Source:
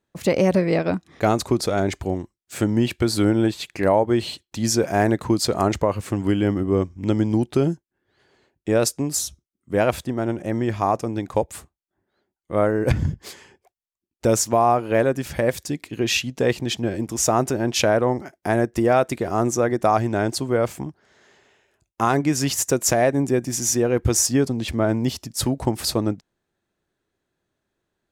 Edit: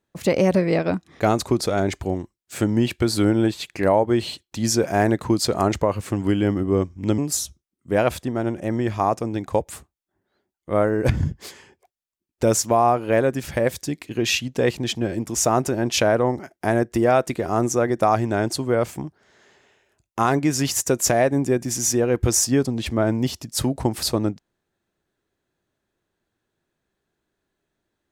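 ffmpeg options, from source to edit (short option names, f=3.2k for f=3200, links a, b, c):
-filter_complex "[0:a]asplit=2[a][b];[a]atrim=end=7.182[c];[b]atrim=start=8.998[d];[c][d]acrossfade=d=0.004:c1=hsin:c2=hsin"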